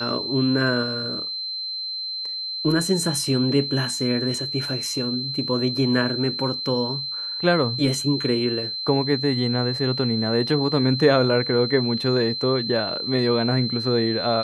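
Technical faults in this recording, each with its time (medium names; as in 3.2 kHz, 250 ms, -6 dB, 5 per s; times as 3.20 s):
whine 4.1 kHz -27 dBFS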